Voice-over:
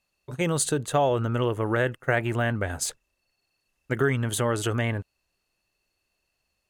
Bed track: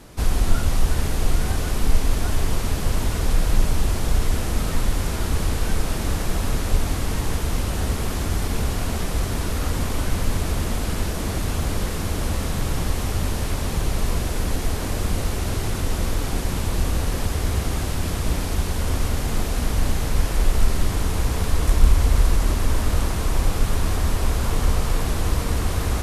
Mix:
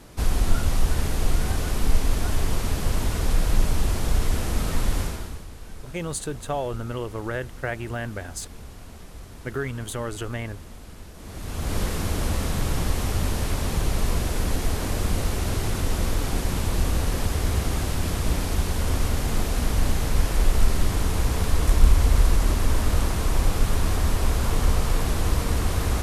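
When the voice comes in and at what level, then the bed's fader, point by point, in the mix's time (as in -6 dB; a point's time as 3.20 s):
5.55 s, -5.5 dB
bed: 5.01 s -2 dB
5.46 s -18 dB
11.13 s -18 dB
11.77 s -1 dB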